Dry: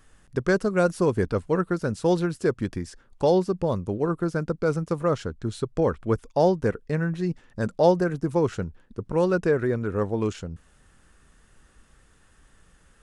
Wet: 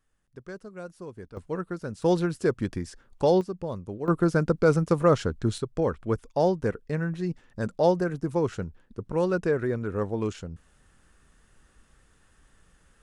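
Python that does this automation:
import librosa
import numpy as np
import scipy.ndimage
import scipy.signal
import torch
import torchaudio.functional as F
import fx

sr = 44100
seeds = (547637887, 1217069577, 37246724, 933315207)

y = fx.gain(x, sr, db=fx.steps((0.0, -18.5), (1.37, -8.0), (2.02, -1.0), (3.41, -8.0), (4.08, 3.5), (5.58, -3.0)))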